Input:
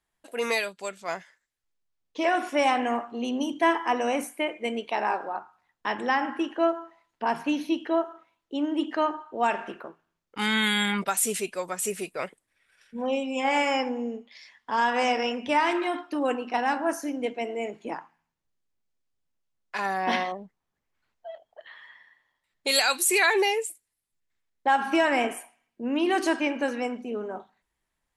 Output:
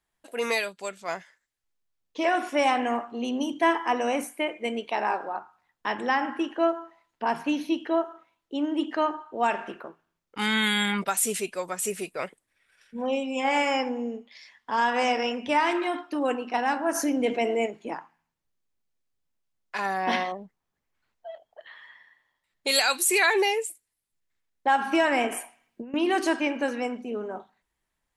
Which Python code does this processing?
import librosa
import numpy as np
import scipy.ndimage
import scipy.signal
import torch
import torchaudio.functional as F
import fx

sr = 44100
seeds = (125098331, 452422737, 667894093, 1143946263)

y = fx.env_flatten(x, sr, amount_pct=50, at=(16.94, 17.65), fade=0.02)
y = fx.over_compress(y, sr, threshold_db=-37.0, ratio=-1.0, at=(25.32, 25.94))